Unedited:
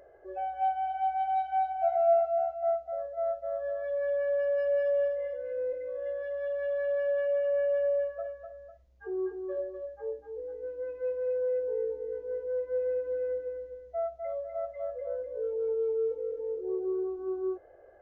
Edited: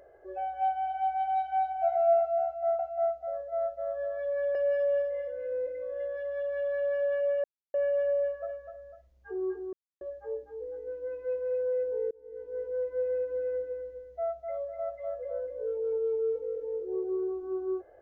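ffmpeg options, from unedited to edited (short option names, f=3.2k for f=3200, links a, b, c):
-filter_complex "[0:a]asplit=7[a][b][c][d][e][f][g];[a]atrim=end=2.792[h];[b]atrim=start=2.438:end=4.202[i];[c]atrim=start=4.608:end=7.5,asetpts=PTS-STARTPTS,afade=t=out:st=2.888:d=0.004:c=hsin,apad=pad_dur=0.3[j];[d]atrim=start=7.5:end=9.49,asetpts=PTS-STARTPTS,afade=t=in:d=0.004:c=hsin,afade=t=out:st=1.986:d=0.004:c=hsin[k];[e]atrim=start=9.49:end=9.77,asetpts=PTS-STARTPTS,volume=0[l];[f]atrim=start=9.77:end=11.87,asetpts=PTS-STARTPTS,afade=t=in:d=0.004:c=hsin,afade=t=out:st=2.096:d=0.004:c=hsin[m];[g]atrim=start=11.87,asetpts=PTS-STARTPTS,afade=t=in:d=0.52[n];[h][i]acrossfade=d=0.004:c1=hsin:c2=hsin[o];[j][k][l][m][n]concat=n=5:v=0:a=1[p];[o][p]acrossfade=d=0.004:c1=hsin:c2=hsin"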